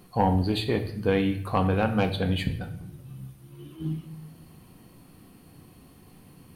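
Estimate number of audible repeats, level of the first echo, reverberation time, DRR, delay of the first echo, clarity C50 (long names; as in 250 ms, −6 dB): no echo audible, no echo audible, 0.65 s, 6.0 dB, no echo audible, 11.0 dB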